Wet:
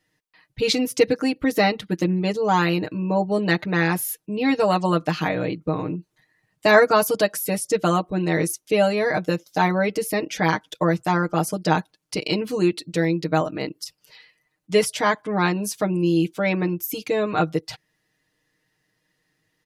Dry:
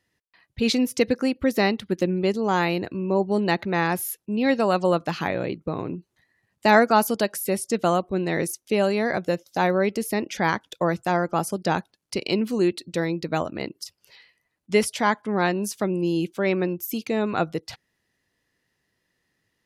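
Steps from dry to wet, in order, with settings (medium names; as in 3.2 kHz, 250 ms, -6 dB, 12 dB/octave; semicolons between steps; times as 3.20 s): comb 6.5 ms, depth 94%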